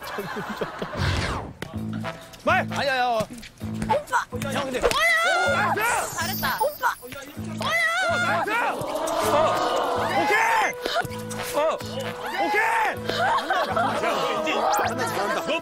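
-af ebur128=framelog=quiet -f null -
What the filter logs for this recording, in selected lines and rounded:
Integrated loudness:
  I:         -23.6 LUFS
  Threshold: -33.8 LUFS
Loudness range:
  LRA:         3.6 LU
  Threshold: -43.6 LUFS
  LRA low:   -26.0 LUFS
  LRA high:  -22.4 LUFS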